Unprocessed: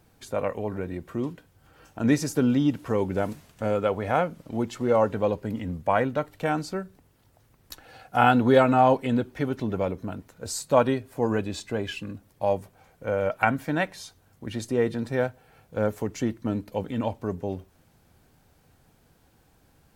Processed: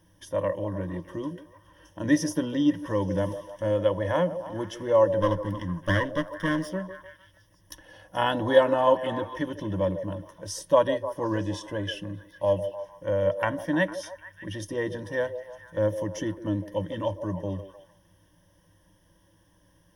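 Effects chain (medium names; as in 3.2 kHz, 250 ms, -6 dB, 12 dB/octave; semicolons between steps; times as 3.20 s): 5.21–6.70 s: comb filter that takes the minimum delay 0.57 ms; rippled EQ curve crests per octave 1.2, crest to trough 17 dB; repeats whose band climbs or falls 151 ms, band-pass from 500 Hz, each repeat 0.7 oct, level -8 dB; trim -4.5 dB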